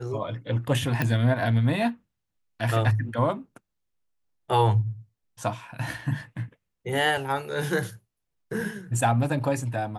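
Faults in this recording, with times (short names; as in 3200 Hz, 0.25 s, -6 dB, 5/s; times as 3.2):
1.02 pop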